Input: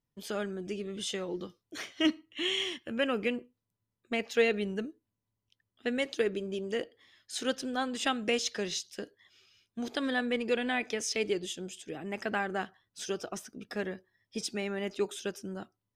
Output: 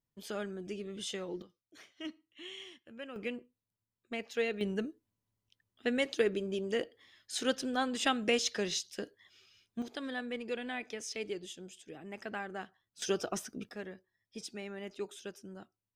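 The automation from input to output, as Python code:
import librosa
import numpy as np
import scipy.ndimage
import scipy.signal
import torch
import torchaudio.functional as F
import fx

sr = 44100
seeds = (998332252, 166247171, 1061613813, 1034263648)

y = fx.gain(x, sr, db=fx.steps((0.0, -4.0), (1.42, -15.5), (3.16, -7.0), (4.61, 0.0), (9.82, -8.0), (13.02, 2.5), (13.69, -8.5)))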